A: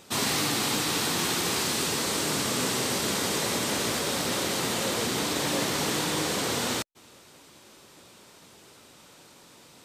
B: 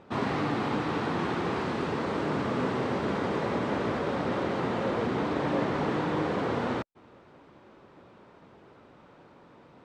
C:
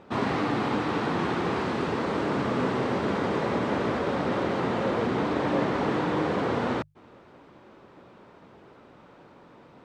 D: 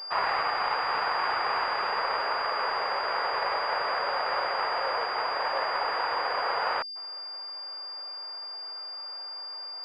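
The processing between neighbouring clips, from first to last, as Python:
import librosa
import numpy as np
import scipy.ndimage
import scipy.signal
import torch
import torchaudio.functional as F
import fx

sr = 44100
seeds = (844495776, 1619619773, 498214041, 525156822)

y1 = scipy.signal.sosfilt(scipy.signal.butter(2, 1400.0, 'lowpass', fs=sr, output='sos'), x)
y1 = F.gain(torch.from_numpy(y1), 2.0).numpy()
y2 = fx.hum_notches(y1, sr, base_hz=50, count=3)
y2 = F.gain(torch.from_numpy(y2), 2.5).numpy()
y3 = fx.rider(y2, sr, range_db=10, speed_s=0.5)
y3 = scipy.signal.sosfilt(scipy.signal.bessel(6, 980.0, 'highpass', norm='mag', fs=sr, output='sos'), y3)
y3 = fx.pwm(y3, sr, carrier_hz=4800.0)
y3 = F.gain(torch.from_numpy(y3), 7.0).numpy()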